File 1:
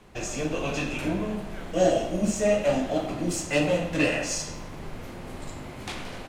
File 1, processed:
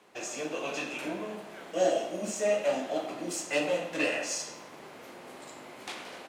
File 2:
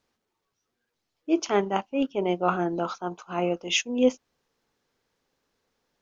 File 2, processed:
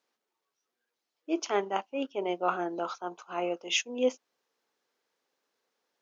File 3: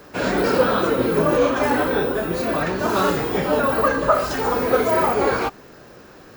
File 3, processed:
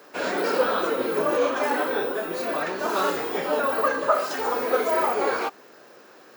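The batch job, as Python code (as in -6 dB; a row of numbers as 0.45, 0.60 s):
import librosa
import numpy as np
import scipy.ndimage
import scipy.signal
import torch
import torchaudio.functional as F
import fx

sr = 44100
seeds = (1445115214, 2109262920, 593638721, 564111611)

y = scipy.signal.sosfilt(scipy.signal.butter(2, 350.0, 'highpass', fs=sr, output='sos'), x)
y = y * 10.0 ** (-3.5 / 20.0)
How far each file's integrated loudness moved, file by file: -5.0, -5.0, -4.5 LU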